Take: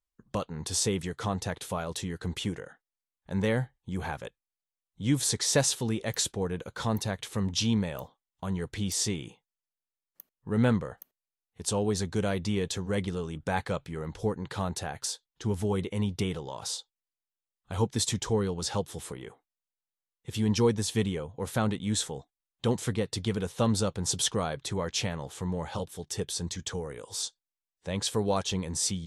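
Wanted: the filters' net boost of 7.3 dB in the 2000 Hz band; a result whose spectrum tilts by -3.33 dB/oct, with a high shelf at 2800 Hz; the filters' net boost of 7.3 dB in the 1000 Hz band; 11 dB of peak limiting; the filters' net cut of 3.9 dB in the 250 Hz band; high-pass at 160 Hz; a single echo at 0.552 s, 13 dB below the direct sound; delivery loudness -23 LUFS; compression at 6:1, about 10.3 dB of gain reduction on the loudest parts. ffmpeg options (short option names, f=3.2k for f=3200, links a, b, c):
-af "highpass=160,equalizer=f=250:t=o:g=-4,equalizer=f=1k:t=o:g=8,equalizer=f=2k:t=o:g=8.5,highshelf=f=2.8k:g=-5,acompressor=threshold=-29dB:ratio=6,alimiter=level_in=1.5dB:limit=-24dB:level=0:latency=1,volume=-1.5dB,aecho=1:1:552:0.224,volume=14.5dB"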